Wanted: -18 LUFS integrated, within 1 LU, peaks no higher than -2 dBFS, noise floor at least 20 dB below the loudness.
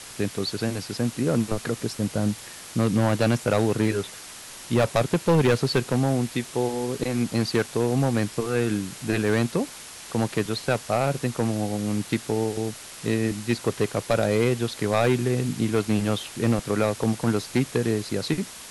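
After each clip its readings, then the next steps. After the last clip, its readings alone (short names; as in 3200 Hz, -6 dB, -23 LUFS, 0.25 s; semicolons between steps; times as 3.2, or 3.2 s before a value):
clipped 1.2%; flat tops at -14.0 dBFS; noise floor -42 dBFS; noise floor target -45 dBFS; loudness -25.0 LUFS; peak -14.0 dBFS; loudness target -18.0 LUFS
-> clip repair -14 dBFS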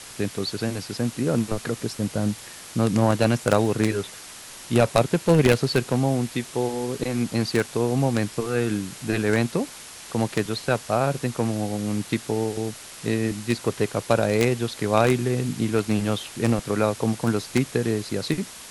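clipped 0.0%; noise floor -42 dBFS; noise floor target -45 dBFS
-> denoiser 6 dB, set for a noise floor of -42 dBFS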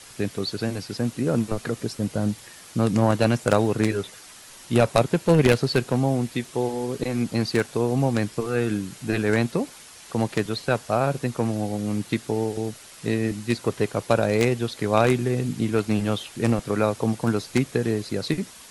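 noise floor -46 dBFS; loudness -24.5 LUFS; peak -5.0 dBFS; loudness target -18.0 LUFS
-> gain +6.5 dB; limiter -2 dBFS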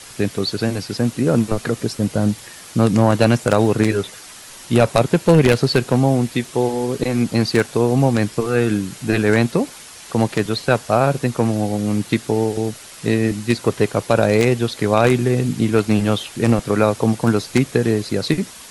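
loudness -18.5 LUFS; peak -2.0 dBFS; noise floor -39 dBFS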